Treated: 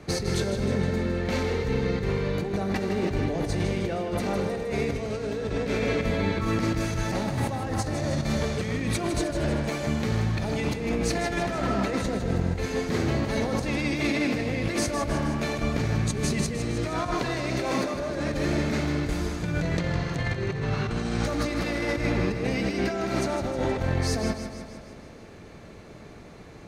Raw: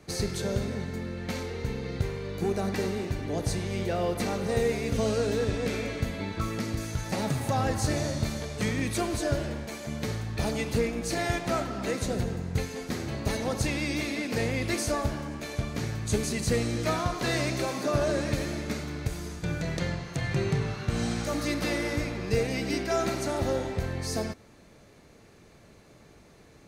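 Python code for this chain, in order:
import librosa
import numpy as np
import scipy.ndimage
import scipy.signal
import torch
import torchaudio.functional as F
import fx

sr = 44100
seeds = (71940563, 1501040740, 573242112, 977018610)

p1 = fx.lowpass(x, sr, hz=3500.0, slope=6)
p2 = fx.over_compress(p1, sr, threshold_db=-33.0, ratio=-1.0)
p3 = p2 + fx.echo_feedback(p2, sr, ms=157, feedback_pct=59, wet_db=-9, dry=0)
y = p3 * librosa.db_to_amplitude(5.5)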